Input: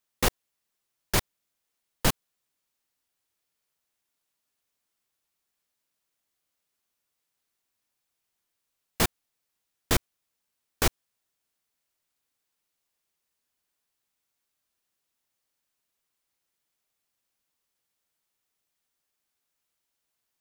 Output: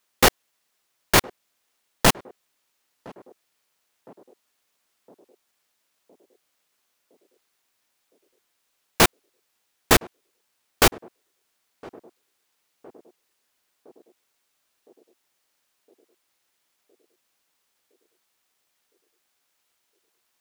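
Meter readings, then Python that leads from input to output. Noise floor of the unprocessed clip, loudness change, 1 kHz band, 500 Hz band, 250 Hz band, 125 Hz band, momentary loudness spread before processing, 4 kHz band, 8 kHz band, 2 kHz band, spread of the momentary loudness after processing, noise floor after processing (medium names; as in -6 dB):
-82 dBFS, +8.5 dB, +10.5 dB, +10.0 dB, +8.0 dB, +4.0 dB, 1 LU, +8.5 dB, +7.5 dB, +10.0 dB, 1 LU, -74 dBFS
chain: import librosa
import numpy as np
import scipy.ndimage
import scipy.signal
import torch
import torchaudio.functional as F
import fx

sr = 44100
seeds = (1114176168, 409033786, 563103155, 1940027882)

y = fx.halfwave_hold(x, sr)
y = fx.low_shelf(y, sr, hz=210.0, db=-11.0)
y = fx.echo_banded(y, sr, ms=1012, feedback_pct=63, hz=400.0, wet_db=-20.5)
y = F.gain(torch.from_numpy(y), 6.0).numpy()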